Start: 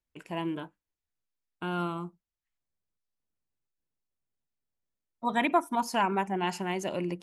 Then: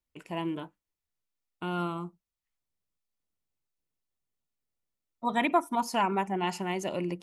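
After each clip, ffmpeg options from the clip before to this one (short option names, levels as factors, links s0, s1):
-af "bandreject=f=1600:w=11"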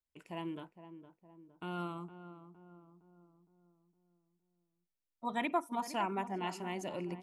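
-filter_complex "[0:a]asplit=2[s0][s1];[s1]adelay=462,lowpass=f=1100:p=1,volume=0.282,asplit=2[s2][s3];[s3]adelay=462,lowpass=f=1100:p=1,volume=0.53,asplit=2[s4][s5];[s5]adelay=462,lowpass=f=1100:p=1,volume=0.53,asplit=2[s6][s7];[s7]adelay=462,lowpass=f=1100:p=1,volume=0.53,asplit=2[s8][s9];[s9]adelay=462,lowpass=f=1100:p=1,volume=0.53,asplit=2[s10][s11];[s11]adelay=462,lowpass=f=1100:p=1,volume=0.53[s12];[s0][s2][s4][s6][s8][s10][s12]amix=inputs=7:normalize=0,volume=0.398"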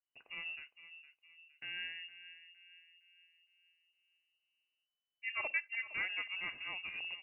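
-af "lowpass=f=2600:t=q:w=0.5098,lowpass=f=2600:t=q:w=0.6013,lowpass=f=2600:t=q:w=0.9,lowpass=f=2600:t=q:w=2.563,afreqshift=-3000,volume=0.668"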